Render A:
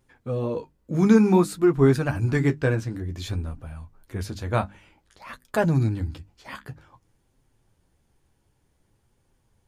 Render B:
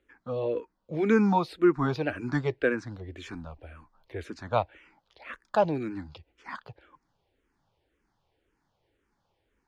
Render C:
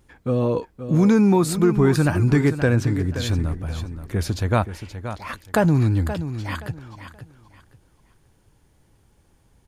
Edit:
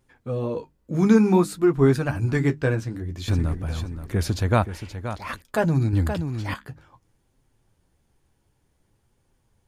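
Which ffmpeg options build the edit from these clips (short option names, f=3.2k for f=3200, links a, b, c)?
-filter_complex "[2:a]asplit=2[a][b];[0:a]asplit=3[c][d][e];[c]atrim=end=3.282[f];[a]atrim=start=3.278:end=5.422[g];[d]atrim=start=5.418:end=5.932[h];[b]atrim=start=5.928:end=6.542[i];[e]atrim=start=6.538[j];[f][g]acrossfade=d=0.004:c1=hsin:c2=hsin[k];[k][h]acrossfade=d=0.004:c1=hsin:c2=hsin[l];[l][i]acrossfade=d=0.004:c1=hsin:c2=hsin[m];[m][j]acrossfade=d=0.004:c1=hsin:c2=hsin"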